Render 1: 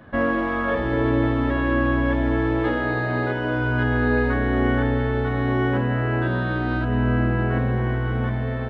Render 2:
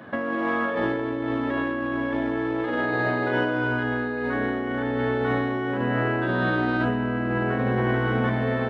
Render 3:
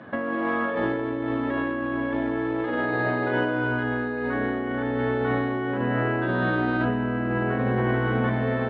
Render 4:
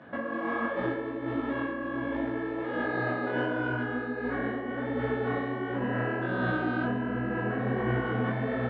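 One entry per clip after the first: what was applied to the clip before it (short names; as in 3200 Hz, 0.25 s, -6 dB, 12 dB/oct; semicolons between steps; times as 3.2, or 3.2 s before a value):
HPF 180 Hz 12 dB/oct; negative-ratio compressor -27 dBFS, ratio -1; gain +2 dB
air absorption 140 m
detuned doubles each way 48 cents; gain -1.5 dB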